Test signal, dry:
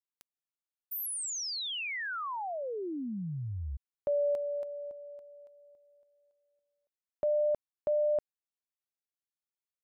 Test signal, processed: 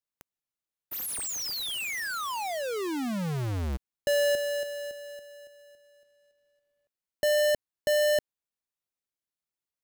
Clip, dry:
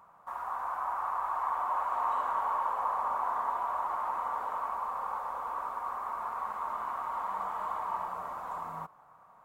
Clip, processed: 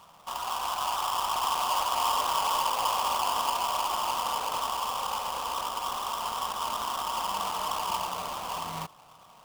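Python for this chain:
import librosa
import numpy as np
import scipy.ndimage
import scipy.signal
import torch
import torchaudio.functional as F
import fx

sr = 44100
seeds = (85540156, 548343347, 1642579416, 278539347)

y = fx.halfwave_hold(x, sr)
y = fx.low_shelf(y, sr, hz=470.0, db=4.0)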